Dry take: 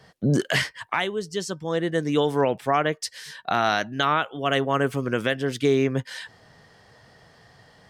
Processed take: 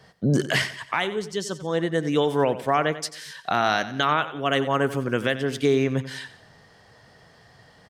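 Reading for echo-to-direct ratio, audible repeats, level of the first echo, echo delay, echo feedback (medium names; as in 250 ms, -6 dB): -13.0 dB, 3, -14.0 dB, 91 ms, 41%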